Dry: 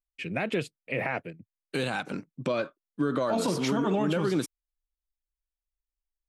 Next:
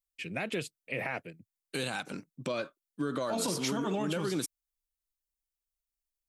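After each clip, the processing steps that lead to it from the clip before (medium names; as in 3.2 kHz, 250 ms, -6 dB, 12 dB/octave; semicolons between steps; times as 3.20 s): treble shelf 4.1 kHz +12 dB; trim -6 dB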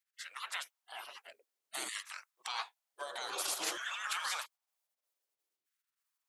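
spectral gate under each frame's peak -20 dB weak; LFO high-pass saw down 0.53 Hz 320–1700 Hz; trim +5 dB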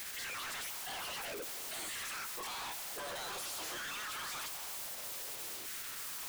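one-bit comparator; trim +2 dB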